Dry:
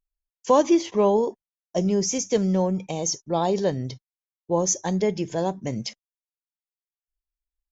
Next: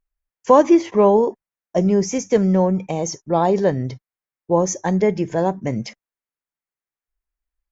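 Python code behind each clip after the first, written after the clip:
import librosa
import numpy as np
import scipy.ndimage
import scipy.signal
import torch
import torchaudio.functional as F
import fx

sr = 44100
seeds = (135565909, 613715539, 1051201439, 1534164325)

y = fx.high_shelf_res(x, sr, hz=2600.0, db=-7.5, q=1.5)
y = y * librosa.db_to_amplitude(5.5)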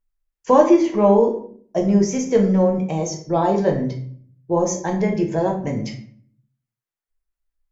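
y = fx.room_shoebox(x, sr, seeds[0], volume_m3=64.0, walls='mixed', distance_m=0.62)
y = y * librosa.db_to_amplitude(-3.5)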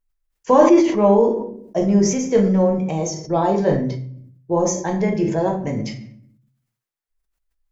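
y = fx.sustainer(x, sr, db_per_s=66.0)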